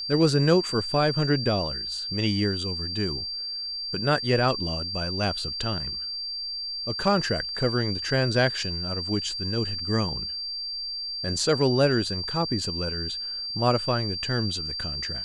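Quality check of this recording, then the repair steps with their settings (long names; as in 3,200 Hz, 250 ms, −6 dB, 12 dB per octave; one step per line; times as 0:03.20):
whistle 4,700 Hz −30 dBFS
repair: notch filter 4,700 Hz, Q 30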